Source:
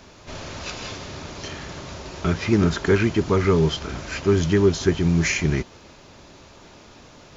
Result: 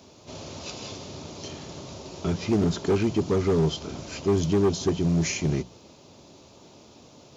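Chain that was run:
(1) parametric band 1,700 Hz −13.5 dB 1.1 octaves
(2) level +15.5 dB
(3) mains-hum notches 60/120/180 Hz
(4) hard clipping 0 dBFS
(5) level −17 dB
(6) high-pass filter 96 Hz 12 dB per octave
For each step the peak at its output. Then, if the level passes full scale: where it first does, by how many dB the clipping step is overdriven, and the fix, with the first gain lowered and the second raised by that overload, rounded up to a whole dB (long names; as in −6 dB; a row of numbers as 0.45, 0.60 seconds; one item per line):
−7.0, +8.5, +8.5, 0.0, −17.0, −12.0 dBFS
step 2, 8.5 dB
step 2 +6.5 dB, step 5 −8 dB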